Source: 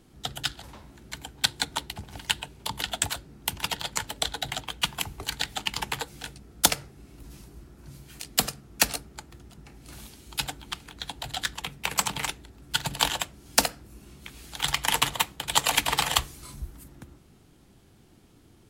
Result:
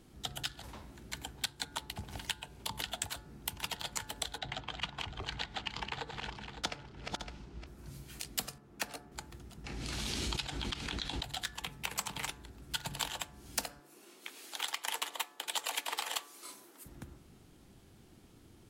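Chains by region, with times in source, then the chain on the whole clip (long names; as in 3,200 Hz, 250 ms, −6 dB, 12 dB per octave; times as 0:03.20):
0:04.38–0:07.67: feedback delay that plays each chunk backwards 280 ms, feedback 49%, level −8.5 dB + high-frequency loss of the air 150 metres
0:08.58–0:09.12: high-pass filter 220 Hz 6 dB per octave + high-shelf EQ 2,800 Hz −11.5 dB
0:09.64–0:11.23: low-pass filter 4,500 Hz + high-shelf EQ 2,900 Hz +11.5 dB + background raised ahead of every attack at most 27 dB per second
0:13.80–0:16.86: high-pass filter 320 Hz 24 dB per octave + gain into a clipping stage and back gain 10.5 dB
whole clip: hum removal 144.3 Hz, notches 12; downward compressor 3 to 1, threshold −34 dBFS; level −2 dB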